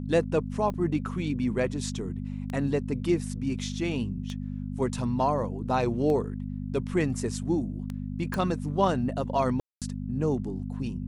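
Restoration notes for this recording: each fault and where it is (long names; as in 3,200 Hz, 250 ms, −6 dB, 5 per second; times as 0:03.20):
mains hum 50 Hz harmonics 5 −34 dBFS
scratch tick 33 1/3 rpm −22 dBFS
0:00.74: drop-out 3.5 ms
0:08.34: click
0:09.60–0:09.82: drop-out 217 ms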